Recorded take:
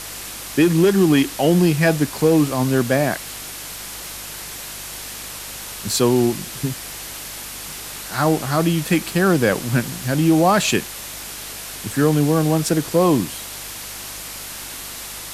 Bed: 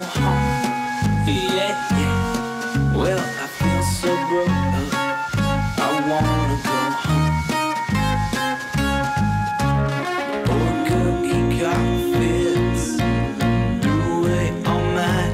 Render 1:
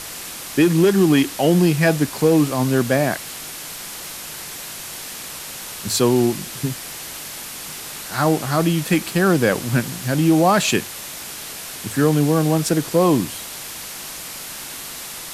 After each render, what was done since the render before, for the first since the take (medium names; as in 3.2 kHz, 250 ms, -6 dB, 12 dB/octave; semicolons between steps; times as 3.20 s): de-hum 50 Hz, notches 2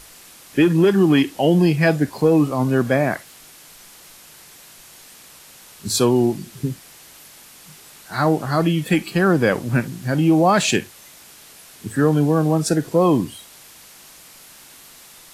noise print and reduce 12 dB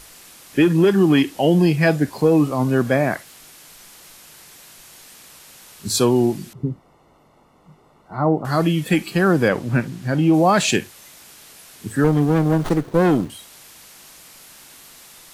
6.53–8.45 s: Savitzky-Golay filter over 65 samples; 9.48–10.34 s: treble shelf 7.4 kHz -10.5 dB; 12.04–13.30 s: sliding maximum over 17 samples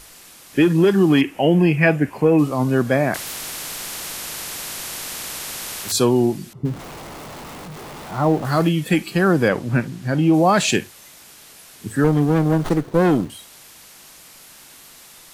1.21–2.39 s: resonant high shelf 3.2 kHz -7 dB, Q 3; 3.14–5.92 s: spectrum-flattening compressor 4:1; 6.65–8.69 s: jump at every zero crossing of -30.5 dBFS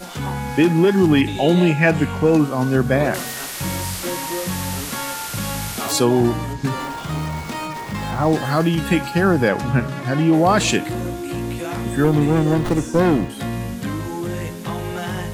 add bed -7 dB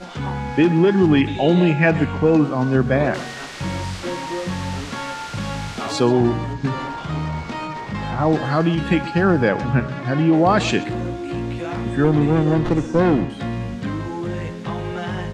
distance through air 120 m; delay 128 ms -17.5 dB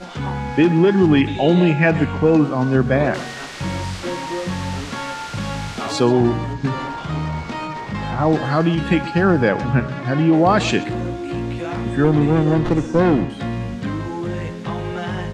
trim +1 dB; peak limiter -3 dBFS, peak gain reduction 1 dB